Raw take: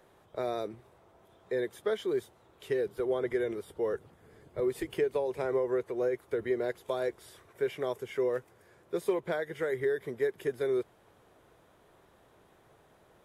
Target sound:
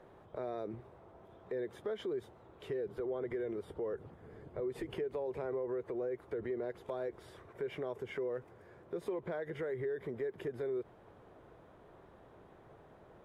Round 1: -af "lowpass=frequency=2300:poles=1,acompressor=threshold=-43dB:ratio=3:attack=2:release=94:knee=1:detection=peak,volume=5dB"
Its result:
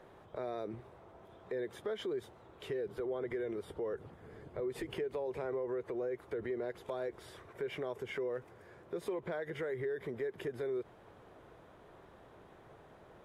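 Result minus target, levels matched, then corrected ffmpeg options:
2,000 Hz band +3.0 dB
-af "lowpass=frequency=1100:poles=1,acompressor=threshold=-43dB:ratio=3:attack=2:release=94:knee=1:detection=peak,volume=5dB"

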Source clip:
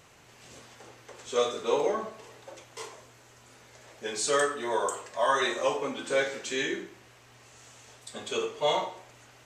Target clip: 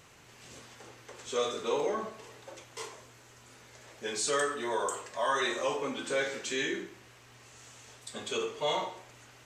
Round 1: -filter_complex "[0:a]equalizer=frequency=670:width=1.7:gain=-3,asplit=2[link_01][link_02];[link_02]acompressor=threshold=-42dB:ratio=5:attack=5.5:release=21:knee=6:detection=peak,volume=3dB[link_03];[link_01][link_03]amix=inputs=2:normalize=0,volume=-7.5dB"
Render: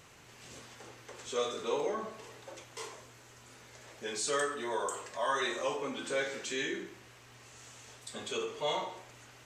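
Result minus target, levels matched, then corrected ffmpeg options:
downward compressor: peak gain reduction +8 dB
-filter_complex "[0:a]equalizer=frequency=670:width=1.7:gain=-3,asplit=2[link_01][link_02];[link_02]acompressor=threshold=-32dB:ratio=5:attack=5.5:release=21:knee=6:detection=peak,volume=3dB[link_03];[link_01][link_03]amix=inputs=2:normalize=0,volume=-7.5dB"

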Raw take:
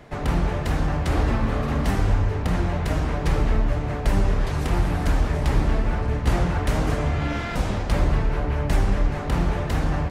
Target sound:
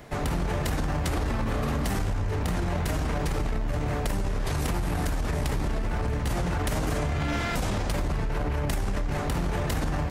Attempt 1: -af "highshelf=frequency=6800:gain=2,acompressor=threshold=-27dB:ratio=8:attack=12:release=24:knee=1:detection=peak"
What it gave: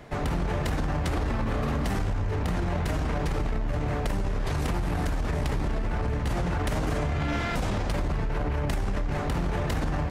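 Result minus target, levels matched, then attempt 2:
8,000 Hz band −5.0 dB
-af "highshelf=frequency=6800:gain=12,acompressor=threshold=-27dB:ratio=8:attack=12:release=24:knee=1:detection=peak"

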